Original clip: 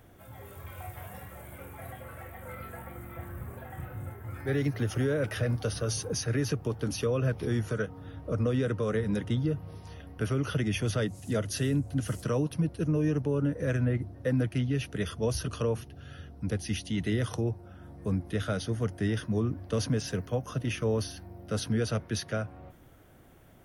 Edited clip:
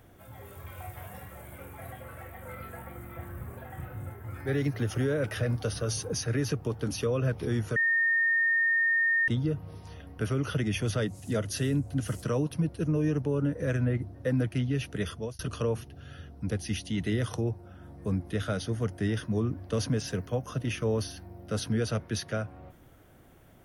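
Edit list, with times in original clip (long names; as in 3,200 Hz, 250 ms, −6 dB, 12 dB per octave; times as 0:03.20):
0:07.76–0:09.28: beep over 1,830 Hz −22 dBFS
0:15.10–0:15.39: fade out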